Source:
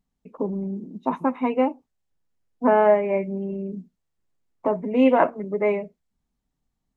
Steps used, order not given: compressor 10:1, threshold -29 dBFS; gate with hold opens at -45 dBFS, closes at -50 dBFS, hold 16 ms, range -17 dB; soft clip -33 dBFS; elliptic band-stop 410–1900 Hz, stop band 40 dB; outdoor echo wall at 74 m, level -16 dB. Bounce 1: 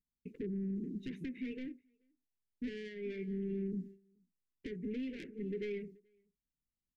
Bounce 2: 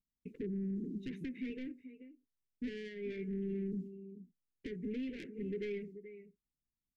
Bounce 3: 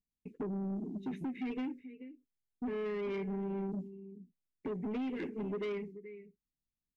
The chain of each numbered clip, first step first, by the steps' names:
compressor > soft clip > outdoor echo > gate with hold > elliptic band-stop; gate with hold > compressor > outdoor echo > soft clip > elliptic band-stop; elliptic band-stop > gate with hold > compressor > outdoor echo > soft clip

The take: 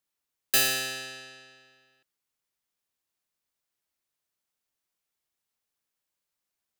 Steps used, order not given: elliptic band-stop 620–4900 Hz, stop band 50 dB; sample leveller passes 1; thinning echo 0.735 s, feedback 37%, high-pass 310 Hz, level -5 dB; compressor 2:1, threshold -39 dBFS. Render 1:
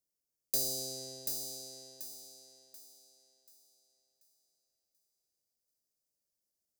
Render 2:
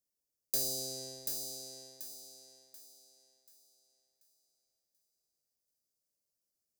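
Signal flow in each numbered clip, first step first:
compressor > elliptic band-stop > sample leveller > thinning echo; elliptic band-stop > sample leveller > compressor > thinning echo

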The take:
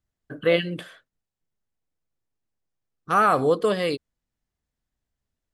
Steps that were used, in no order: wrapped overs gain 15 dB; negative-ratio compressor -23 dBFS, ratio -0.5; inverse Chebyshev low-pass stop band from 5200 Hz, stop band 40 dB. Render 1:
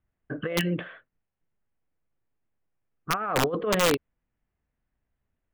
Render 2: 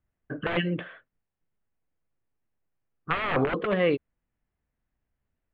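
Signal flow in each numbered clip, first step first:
negative-ratio compressor > inverse Chebyshev low-pass > wrapped overs; wrapped overs > negative-ratio compressor > inverse Chebyshev low-pass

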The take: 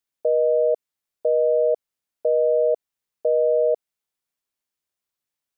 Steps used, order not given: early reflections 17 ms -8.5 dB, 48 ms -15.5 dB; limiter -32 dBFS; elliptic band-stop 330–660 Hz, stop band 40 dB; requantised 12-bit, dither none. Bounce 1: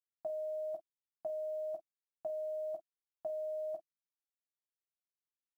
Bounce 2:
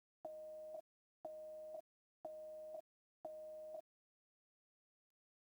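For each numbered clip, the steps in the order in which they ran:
elliptic band-stop > limiter > requantised > early reflections; early reflections > limiter > elliptic band-stop > requantised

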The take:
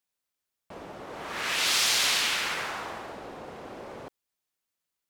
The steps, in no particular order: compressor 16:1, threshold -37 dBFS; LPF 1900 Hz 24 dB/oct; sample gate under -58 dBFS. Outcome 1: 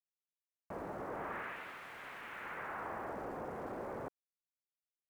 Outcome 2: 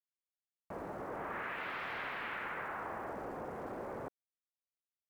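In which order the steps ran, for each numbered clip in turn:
compressor > LPF > sample gate; LPF > compressor > sample gate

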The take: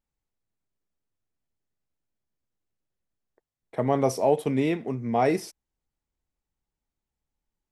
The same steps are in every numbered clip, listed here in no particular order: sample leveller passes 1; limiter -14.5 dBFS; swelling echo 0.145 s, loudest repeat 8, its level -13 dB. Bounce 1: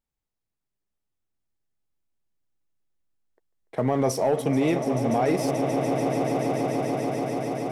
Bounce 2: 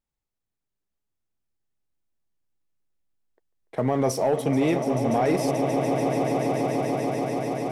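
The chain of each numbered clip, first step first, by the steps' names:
sample leveller > swelling echo > limiter; swelling echo > sample leveller > limiter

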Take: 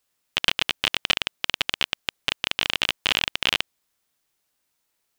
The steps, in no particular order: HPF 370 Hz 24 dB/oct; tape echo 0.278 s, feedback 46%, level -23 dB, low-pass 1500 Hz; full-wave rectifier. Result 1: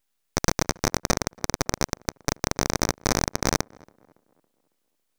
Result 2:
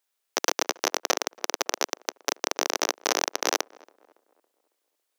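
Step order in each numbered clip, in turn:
HPF > full-wave rectifier > tape echo; full-wave rectifier > HPF > tape echo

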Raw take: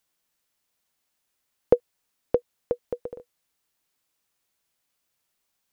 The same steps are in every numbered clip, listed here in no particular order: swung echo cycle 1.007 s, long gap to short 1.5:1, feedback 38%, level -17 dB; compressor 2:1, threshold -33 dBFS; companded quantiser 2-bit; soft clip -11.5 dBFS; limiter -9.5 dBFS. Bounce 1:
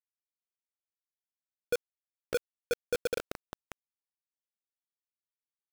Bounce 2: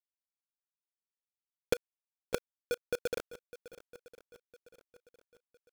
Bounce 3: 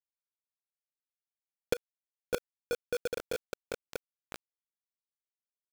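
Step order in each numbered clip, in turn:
limiter > soft clip > compressor > swung echo > companded quantiser; companded quantiser > compressor > limiter > soft clip > swung echo; swung echo > companded quantiser > limiter > compressor > soft clip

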